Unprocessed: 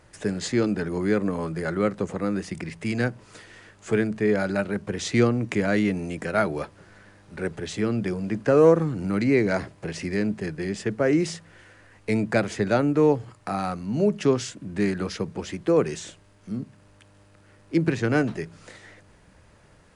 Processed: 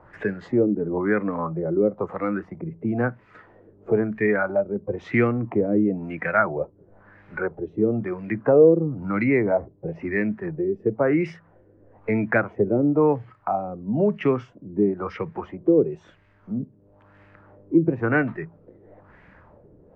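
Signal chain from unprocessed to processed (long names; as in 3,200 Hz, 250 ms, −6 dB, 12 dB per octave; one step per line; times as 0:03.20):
noise reduction from a noise print of the clip's start 9 dB
auto-filter low-pass sine 1 Hz 380–2,100 Hz
multiband upward and downward compressor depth 40%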